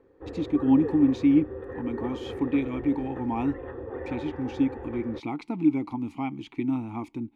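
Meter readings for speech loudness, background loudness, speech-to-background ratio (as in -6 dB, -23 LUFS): -27.5 LUFS, -37.5 LUFS, 10.0 dB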